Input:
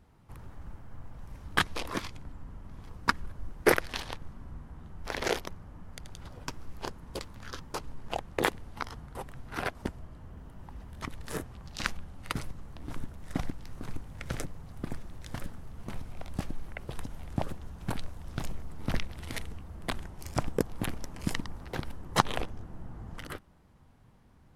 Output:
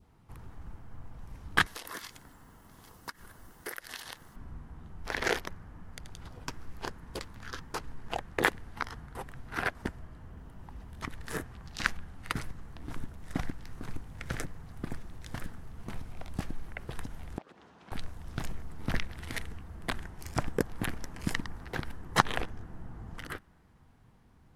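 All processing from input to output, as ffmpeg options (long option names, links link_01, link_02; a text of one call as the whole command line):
ffmpeg -i in.wav -filter_complex "[0:a]asettb=1/sr,asplit=3[link_01][link_02][link_03];[link_01]atrim=end=1.664[link_04];[link_02]atrim=start=1.66:end=4.36,asetpts=PTS-STARTPTS,afade=type=in:duration=0.004:curve=qsin,afade=type=out:start_time=2.696:duration=0.004:curve=qsin,aemphasis=mode=production:type=bsi,acompressor=threshold=-38dB:ratio=5:attack=3.2:release=140:knee=1:detection=peak,bandreject=frequency=2400:width=9.4[link_05];[link_03]atrim=start=4.356[link_06];[link_04][link_05]acrossfade=duration=0.004:curve1=hsin:curve2=qsin[link_07];[link_07][link_06]acrossfade=duration=0.004:curve1=qsin:curve2=hsin,asettb=1/sr,asplit=3[link_08][link_09][link_10];[link_08]atrim=end=17.384[link_11];[link_09]atrim=start=17.38:end=17.92,asetpts=PTS-STARTPTS,afade=type=in:duration=0.004:curve=qsin,afade=type=out:start_time=0.536:duration=0.004:curve=qsin,asoftclip=type=hard:threshold=-22.5dB,highpass=310,lowpass=4700,acompressor=threshold=-48dB:ratio=8:attack=3.2:release=140:knee=1:detection=peak[link_12];[link_10]atrim=start=17.916[link_13];[link_11][link_12]acrossfade=duration=0.004:curve1=hsin:curve2=qsin[link_14];[link_14][link_13]acrossfade=duration=0.004:curve1=qsin:curve2=hsin,bandreject=frequency=570:width=12,adynamicequalizer=threshold=0.00251:dfrequency=1700:dqfactor=2.1:tfrequency=1700:tqfactor=2.1:attack=5:release=100:ratio=0.375:range=3.5:mode=boostabove:tftype=bell,volume=-1dB" out.wav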